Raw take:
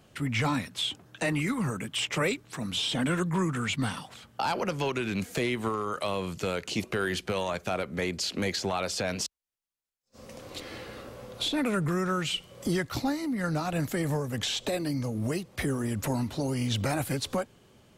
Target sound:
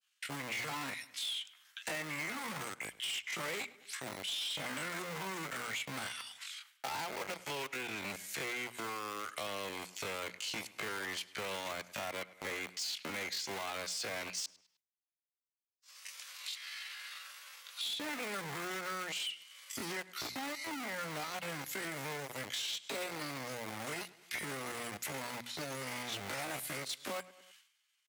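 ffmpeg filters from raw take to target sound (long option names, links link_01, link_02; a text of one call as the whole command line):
ffmpeg -i in.wav -filter_complex "[0:a]acrossover=split=1500[link_01][link_02];[link_01]acrusher=bits=4:mix=0:aa=0.000001[link_03];[link_03][link_02]amix=inputs=2:normalize=0,agate=range=-33dB:threshold=-55dB:ratio=3:detection=peak,adynamicequalizer=threshold=0.00282:dfrequency=2100:dqfactor=7.6:tfrequency=2100:tqfactor=7.6:attack=5:release=100:ratio=0.375:range=3:mode=boostabove:tftype=bell,asoftclip=type=tanh:threshold=-30.5dB,acrossover=split=440[link_04][link_05];[link_04]acompressor=threshold=-45dB:ratio=6[link_06];[link_06][link_05]amix=inputs=2:normalize=0,atempo=0.64,highpass=91,bandreject=frequency=60:width_type=h:width=6,bandreject=frequency=120:width_type=h:width=6,bandreject=frequency=180:width_type=h:width=6,bandreject=frequency=240:width_type=h:width=6,asplit=2[link_07][link_08];[link_08]adelay=103,lowpass=frequency=3400:poles=1,volume=-20.5dB,asplit=2[link_09][link_10];[link_10]adelay=103,lowpass=frequency=3400:poles=1,volume=0.43,asplit=2[link_11][link_12];[link_12]adelay=103,lowpass=frequency=3400:poles=1,volume=0.43[link_13];[link_09][link_11][link_13]amix=inputs=3:normalize=0[link_14];[link_07][link_14]amix=inputs=2:normalize=0,acompressor=threshold=-53dB:ratio=2,volume=7.5dB" out.wav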